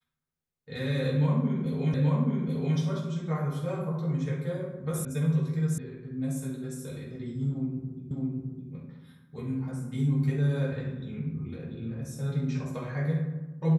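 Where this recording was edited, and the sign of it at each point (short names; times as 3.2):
1.94 repeat of the last 0.83 s
5.05 sound cut off
5.78 sound cut off
8.11 repeat of the last 0.61 s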